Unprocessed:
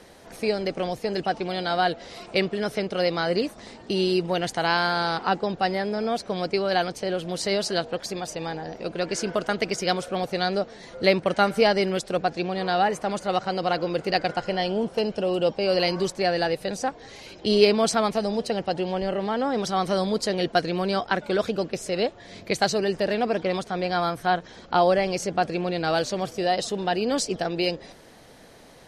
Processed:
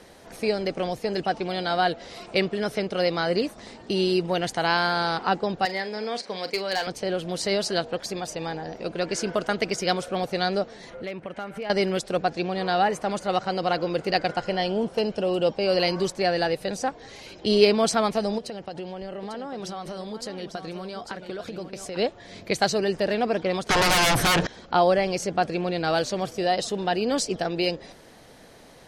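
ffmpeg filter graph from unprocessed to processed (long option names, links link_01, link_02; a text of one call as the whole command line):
ffmpeg -i in.wav -filter_complex "[0:a]asettb=1/sr,asplit=3[link_01][link_02][link_03];[link_01]atrim=end=5.654[link_04];[link_02]atrim=start=5.65:end=6.87,asetpts=PTS-STARTPTS,afade=type=in:duration=0.004:curve=qsin,afade=type=out:start_time=1.216:duration=0.004:curve=qsin,highpass=310,equalizer=frequency=340:width_type=q:width=4:gain=-7,equalizer=frequency=660:width_type=q:width=4:gain=-7,equalizer=frequency=1300:width_type=q:width=4:gain=-6,equalizer=frequency=2000:width_type=q:width=4:gain=5,equalizer=frequency=4600:width_type=q:width=4:gain=4,lowpass=frequency=9100:width=0.5412,lowpass=frequency=9100:width=1.3066,asoftclip=type=hard:threshold=-18dB,asplit=2[link_05][link_06];[link_06]adelay=42,volume=-13dB[link_07];[link_05][link_07]amix=inputs=2:normalize=0,atrim=end_sample=53802[link_08];[link_03]atrim=start=6.866[link_09];[link_04][link_08]acrossfade=duration=0.004:curve1=hsin:curve2=qsin[link_10];[link_10][link_09]acrossfade=duration=0.004:curve1=qsin:curve2=hsin,asettb=1/sr,asplit=3[link_11][link_12][link_13];[link_11]atrim=end=10.904[link_14];[link_12]atrim=start=10.9:end=11.7,asetpts=PTS-STARTPTS,afade=type=in:duration=0.004:curve=qsin,afade=type=out:start_time=0.796:duration=0.004:curve=qsin,highshelf=frequency=3500:width_type=q:width=1.5:gain=-7.5,asoftclip=type=hard:threshold=-10.5dB,acompressor=threshold=-35dB:ratio=3:attack=3.2:release=140:knee=1:detection=peak[link_15];[link_13]atrim=start=11.696[link_16];[link_14][link_15]acrossfade=duration=0.004:curve1=hsin:curve2=qsin[link_17];[link_17][link_16]acrossfade=duration=0.004:curve1=qsin:curve2=hsin,asettb=1/sr,asplit=3[link_18][link_19][link_20];[link_18]atrim=end=18.384[link_21];[link_19]atrim=start=18.38:end=21.97,asetpts=PTS-STARTPTS,afade=type=in:duration=0.004:curve=qsin,afade=type=out:start_time=3.586:duration=0.004:curve=qsin,agate=range=-33dB:threshold=-36dB:ratio=3:release=100:detection=peak,acompressor=threshold=-31dB:ratio=6:attack=3.2:release=140:knee=1:detection=peak,aecho=1:1:847:0.355,atrim=end_sample=158319[link_22];[link_20]atrim=start=21.966[link_23];[link_21][link_22]acrossfade=duration=0.004:curve1=hsin:curve2=qsin[link_24];[link_24][link_23]acrossfade=duration=0.004:curve1=qsin:curve2=hsin,asettb=1/sr,asplit=3[link_25][link_26][link_27];[link_25]atrim=end=23.694[link_28];[link_26]atrim=start=23.69:end=24.47,asetpts=PTS-STARTPTS,afade=type=in:duration=0.004:curve=qsin,afade=type=out:start_time=0.776:duration=0.004:curve=qsin,acompressor=threshold=-23dB:ratio=5:attack=3.2:release=140:knee=1:detection=peak,aeval=exprs='0.15*sin(PI/2*6.31*val(0)/0.15)':channel_layout=same[link_29];[link_27]atrim=start=24.466[link_30];[link_28][link_29]acrossfade=duration=0.004:curve1=hsin:curve2=qsin[link_31];[link_31][link_30]acrossfade=duration=0.004:curve1=qsin:curve2=hsin" out.wav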